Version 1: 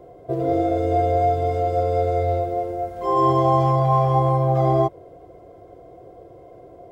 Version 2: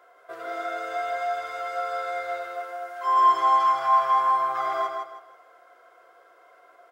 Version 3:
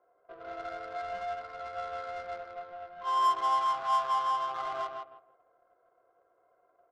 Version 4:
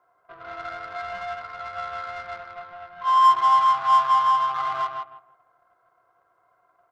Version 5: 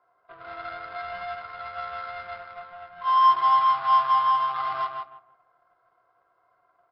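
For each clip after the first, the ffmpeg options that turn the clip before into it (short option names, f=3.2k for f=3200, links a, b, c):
-filter_complex "[0:a]highpass=f=1.4k:t=q:w=5,asplit=2[a][b];[b]aecho=0:1:159|318|477|636:0.562|0.169|0.0506|0.0152[c];[a][c]amix=inputs=2:normalize=0"
-af "asubboost=boost=3.5:cutoff=100,adynamicsmooth=sensitivity=2.5:basefreq=690,volume=-7.5dB"
-af "equalizer=f=125:t=o:w=1:g=8,equalizer=f=500:t=o:w=1:g=-11,equalizer=f=1k:t=o:w=1:g=8,equalizer=f=2k:t=o:w=1:g=4,equalizer=f=4k:t=o:w=1:g=3,volume=3.5dB"
-af "bandreject=f=50:t=h:w=6,bandreject=f=100:t=h:w=6,bandreject=f=150:t=h:w=6,bandreject=f=200:t=h:w=6,bandreject=f=250:t=h:w=6,bandreject=f=300:t=h:w=6,bandreject=f=350:t=h:w=6,volume=-1.5dB" -ar 12000 -c:a libmp3lame -b:a 32k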